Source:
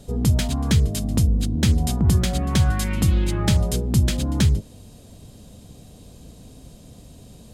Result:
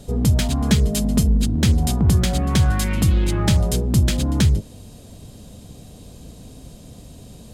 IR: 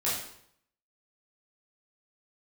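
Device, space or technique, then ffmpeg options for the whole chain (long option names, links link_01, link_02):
parallel distortion: -filter_complex "[0:a]asettb=1/sr,asplit=3[link_01][link_02][link_03];[link_01]atrim=end=0.614[link_04];[link_02]atrim=start=0.61:end=1.47,asetpts=PTS-STARTPTS,afade=type=in:duration=0.004:curve=qsin,afade=type=out:start_time=0.856:duration=0.004:curve=qsin,aecho=1:1:4.8:0.69,atrim=end_sample=37926[link_05];[link_03]atrim=start=1.466[link_06];[link_04][link_05]acrossfade=duration=0.004:curve1=hsin:curve2=qsin[link_07];[link_07][link_06]acrossfade=duration=0.004:curve1=qsin:curve2=hsin,asplit=2[link_08][link_09];[link_09]asoftclip=type=hard:threshold=-22dB,volume=-6dB[link_10];[link_08][link_10]amix=inputs=2:normalize=0"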